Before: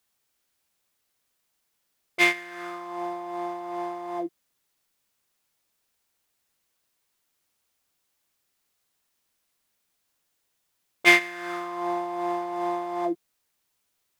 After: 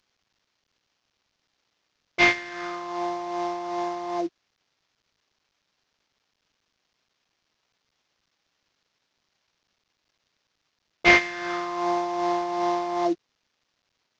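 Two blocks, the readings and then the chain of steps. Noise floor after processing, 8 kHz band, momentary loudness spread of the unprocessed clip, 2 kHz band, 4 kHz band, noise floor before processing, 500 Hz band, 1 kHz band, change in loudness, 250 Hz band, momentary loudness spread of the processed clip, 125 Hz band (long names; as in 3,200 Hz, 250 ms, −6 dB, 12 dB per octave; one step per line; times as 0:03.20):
−78 dBFS, −1.0 dB, 17 LU, +0.5 dB, +0.5 dB, −76 dBFS, +3.0 dB, +3.5 dB, +1.0 dB, +3.0 dB, 14 LU, +6.0 dB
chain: variable-slope delta modulation 32 kbit/s
level +3.5 dB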